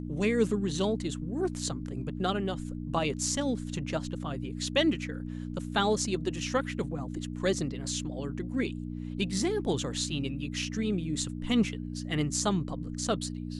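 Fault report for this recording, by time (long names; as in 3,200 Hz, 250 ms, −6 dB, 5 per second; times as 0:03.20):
mains hum 60 Hz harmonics 5 −37 dBFS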